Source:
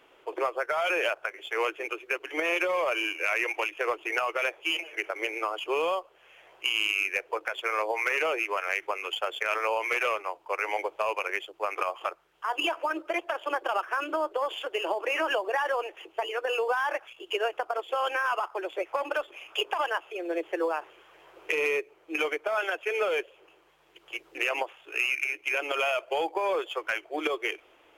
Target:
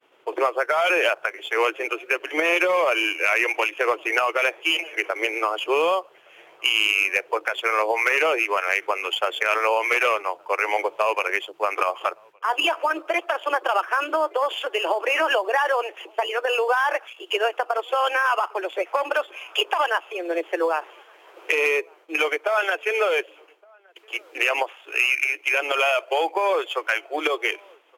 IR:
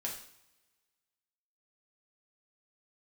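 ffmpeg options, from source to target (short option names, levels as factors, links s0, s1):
-filter_complex "[0:a]agate=range=0.0224:threshold=0.00251:ratio=3:detection=peak,asetnsamples=n=441:p=0,asendcmd='12.54 highpass f 380',highpass=140,asplit=2[s0][s1];[s1]adelay=1166,volume=0.0355,highshelf=f=4000:g=-26.2[s2];[s0][s2]amix=inputs=2:normalize=0,volume=2.24"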